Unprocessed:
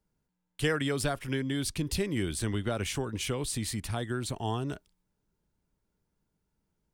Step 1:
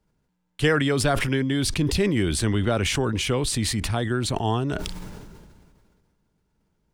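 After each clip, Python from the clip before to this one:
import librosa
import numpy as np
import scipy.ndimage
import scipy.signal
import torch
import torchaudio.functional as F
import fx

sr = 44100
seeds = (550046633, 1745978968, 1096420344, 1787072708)

y = fx.high_shelf(x, sr, hz=8100.0, db=-11.0)
y = fx.sustainer(y, sr, db_per_s=30.0)
y = F.gain(torch.from_numpy(y), 7.5).numpy()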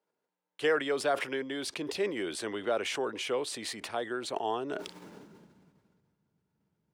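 y = fx.high_shelf(x, sr, hz=5100.0, db=-7.5)
y = fx.filter_sweep_highpass(y, sr, from_hz=470.0, to_hz=120.0, start_s=4.52, end_s=6.07, q=1.4)
y = F.gain(torch.from_numpy(y), -7.0).numpy()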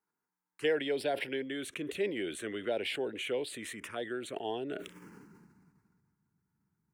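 y = fx.env_phaser(x, sr, low_hz=560.0, high_hz=1200.0, full_db=-28.5)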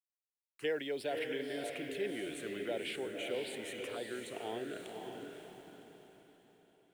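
y = fx.quant_dither(x, sr, seeds[0], bits=10, dither='none')
y = fx.echo_diffused(y, sr, ms=552, feedback_pct=40, wet_db=-4.0)
y = F.gain(torch.from_numpy(y), -5.5).numpy()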